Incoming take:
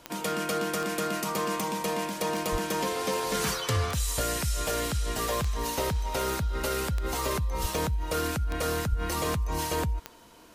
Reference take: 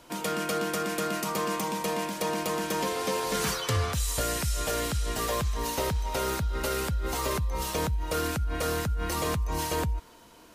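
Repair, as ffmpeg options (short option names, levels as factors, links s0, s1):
-filter_complex "[0:a]adeclick=t=4,asplit=3[s0][s1][s2];[s0]afade=t=out:st=2.51:d=0.02[s3];[s1]highpass=f=140:w=0.5412,highpass=f=140:w=1.3066,afade=t=in:st=2.51:d=0.02,afade=t=out:st=2.63:d=0.02[s4];[s2]afade=t=in:st=2.63:d=0.02[s5];[s3][s4][s5]amix=inputs=3:normalize=0,asplit=3[s6][s7][s8];[s6]afade=t=out:st=7.61:d=0.02[s9];[s7]highpass=f=140:w=0.5412,highpass=f=140:w=1.3066,afade=t=in:st=7.61:d=0.02,afade=t=out:st=7.73:d=0.02[s10];[s8]afade=t=in:st=7.73:d=0.02[s11];[s9][s10][s11]amix=inputs=3:normalize=0,asplit=3[s12][s13][s14];[s12]afade=t=out:st=8.89:d=0.02[s15];[s13]highpass=f=140:w=0.5412,highpass=f=140:w=1.3066,afade=t=in:st=8.89:d=0.02,afade=t=out:st=9.01:d=0.02[s16];[s14]afade=t=in:st=9.01:d=0.02[s17];[s15][s16][s17]amix=inputs=3:normalize=0"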